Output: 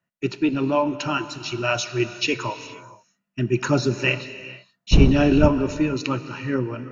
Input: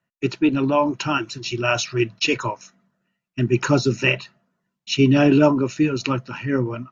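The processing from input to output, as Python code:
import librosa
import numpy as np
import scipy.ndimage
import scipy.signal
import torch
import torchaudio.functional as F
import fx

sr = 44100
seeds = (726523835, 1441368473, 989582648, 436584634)

y = fx.dmg_wind(x, sr, seeds[0], corner_hz=130.0, level_db=-9.0, at=(4.91, 5.47), fade=0.02)
y = fx.rev_gated(y, sr, seeds[1], gate_ms=500, shape='flat', drr_db=11.5)
y = y * 10.0 ** (-2.5 / 20.0)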